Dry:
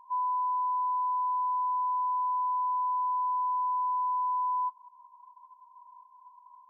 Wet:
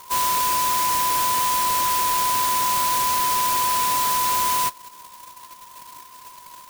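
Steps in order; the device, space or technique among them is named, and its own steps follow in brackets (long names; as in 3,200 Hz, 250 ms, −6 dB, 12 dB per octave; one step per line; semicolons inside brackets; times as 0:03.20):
early CD player with a faulty converter (converter with a step at zero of −53.5 dBFS; converter with an unsteady clock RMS 0.11 ms)
level +8 dB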